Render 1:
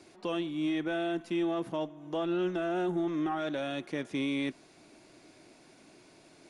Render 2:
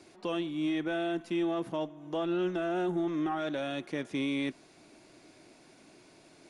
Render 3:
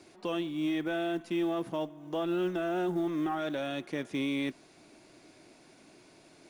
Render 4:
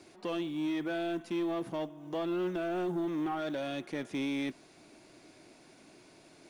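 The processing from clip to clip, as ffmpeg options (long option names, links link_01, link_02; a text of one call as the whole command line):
ffmpeg -i in.wav -af anull out.wav
ffmpeg -i in.wav -af "acrusher=bits=9:mode=log:mix=0:aa=0.000001" out.wav
ffmpeg -i in.wav -af "asoftclip=type=tanh:threshold=-27dB" out.wav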